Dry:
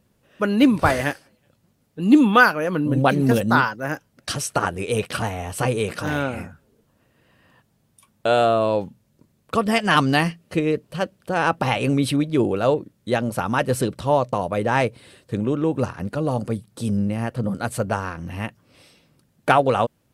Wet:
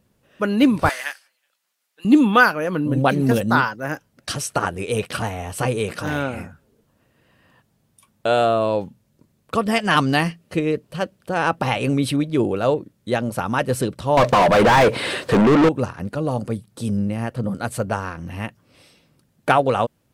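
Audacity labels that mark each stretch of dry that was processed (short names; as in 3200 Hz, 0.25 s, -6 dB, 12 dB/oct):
0.890000	2.050000	HPF 1400 Hz
14.170000	15.690000	overdrive pedal drive 36 dB, tone 2100 Hz, clips at -6.5 dBFS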